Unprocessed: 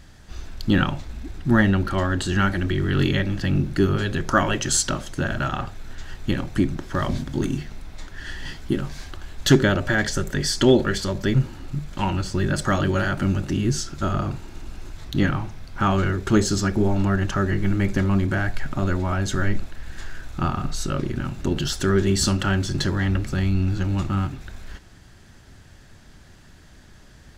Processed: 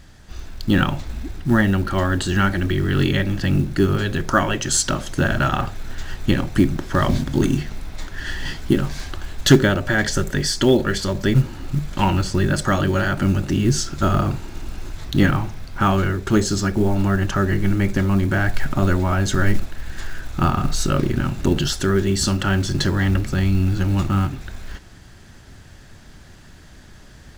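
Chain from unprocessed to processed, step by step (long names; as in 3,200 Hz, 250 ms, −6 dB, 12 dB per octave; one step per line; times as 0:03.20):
speech leveller within 3 dB 0.5 s
floating-point word with a short mantissa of 4 bits
level +3 dB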